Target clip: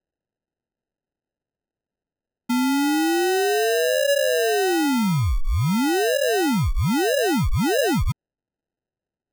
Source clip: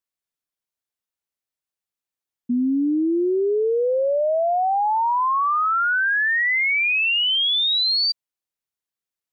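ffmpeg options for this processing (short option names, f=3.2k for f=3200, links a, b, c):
-af "acrusher=samples=39:mix=1:aa=0.000001"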